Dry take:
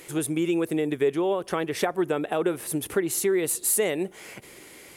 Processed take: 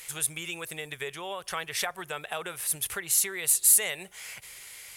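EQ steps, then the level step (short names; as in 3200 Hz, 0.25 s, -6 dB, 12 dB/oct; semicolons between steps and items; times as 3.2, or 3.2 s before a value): passive tone stack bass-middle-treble 10-0-10; +5.0 dB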